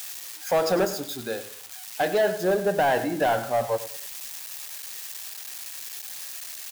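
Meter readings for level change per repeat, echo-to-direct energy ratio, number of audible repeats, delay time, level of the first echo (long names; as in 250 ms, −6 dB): −9.5 dB, −13.5 dB, 3, 100 ms, −14.0 dB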